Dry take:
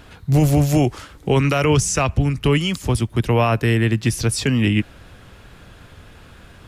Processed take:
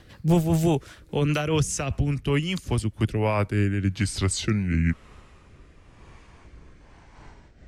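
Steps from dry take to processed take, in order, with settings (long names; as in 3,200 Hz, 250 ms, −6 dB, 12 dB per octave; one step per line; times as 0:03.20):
gliding playback speed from 117% → 57%
rotating-speaker cabinet horn 5 Hz, later 1 Hz, at 0:02.64
amplitude modulation by smooth noise, depth 60%
level −1.5 dB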